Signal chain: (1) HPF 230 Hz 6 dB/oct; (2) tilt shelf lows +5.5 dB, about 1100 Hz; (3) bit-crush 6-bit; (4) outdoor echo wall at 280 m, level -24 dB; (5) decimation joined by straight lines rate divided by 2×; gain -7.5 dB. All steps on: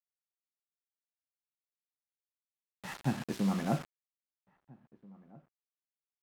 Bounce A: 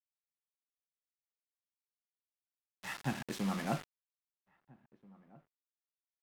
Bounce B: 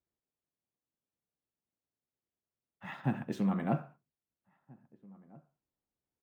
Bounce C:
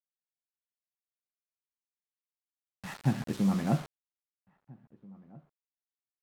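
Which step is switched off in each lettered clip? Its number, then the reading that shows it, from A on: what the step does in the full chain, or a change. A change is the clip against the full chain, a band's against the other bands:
2, momentary loudness spread change -8 LU; 3, distortion -15 dB; 1, 125 Hz band +5.0 dB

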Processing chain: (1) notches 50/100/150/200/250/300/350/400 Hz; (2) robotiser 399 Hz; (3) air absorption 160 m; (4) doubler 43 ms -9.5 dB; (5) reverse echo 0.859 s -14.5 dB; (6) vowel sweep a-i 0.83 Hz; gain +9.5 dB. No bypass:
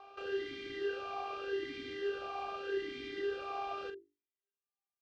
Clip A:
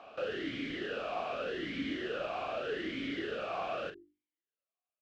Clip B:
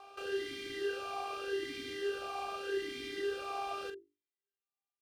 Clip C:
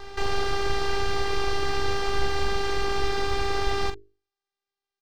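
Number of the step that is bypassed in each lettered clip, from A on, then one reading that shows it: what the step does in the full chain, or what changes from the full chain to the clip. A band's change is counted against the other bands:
2, 125 Hz band +7.5 dB; 3, 4 kHz band +3.5 dB; 6, 125 Hz band +16.0 dB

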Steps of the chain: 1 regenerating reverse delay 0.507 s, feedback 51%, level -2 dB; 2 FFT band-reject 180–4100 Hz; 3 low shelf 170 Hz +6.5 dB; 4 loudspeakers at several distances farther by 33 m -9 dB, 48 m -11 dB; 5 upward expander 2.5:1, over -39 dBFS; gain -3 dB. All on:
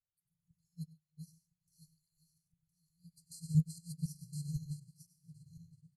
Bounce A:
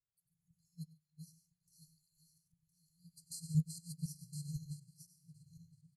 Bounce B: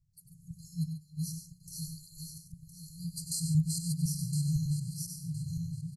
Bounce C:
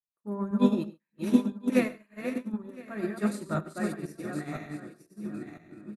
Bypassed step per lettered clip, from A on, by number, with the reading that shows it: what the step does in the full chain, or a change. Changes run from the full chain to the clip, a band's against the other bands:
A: 3, loudness change -3.5 LU; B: 5, 8 kHz band +9.0 dB; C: 2, 250 Hz band +12.5 dB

